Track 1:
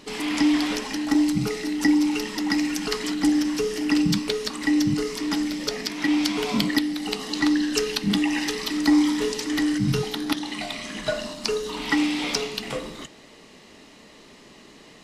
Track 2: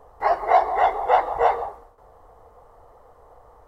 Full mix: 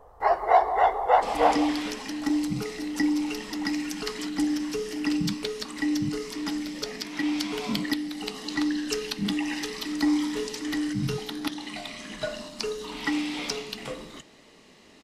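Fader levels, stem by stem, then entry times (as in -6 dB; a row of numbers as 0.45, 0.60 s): -5.5, -2.0 dB; 1.15, 0.00 s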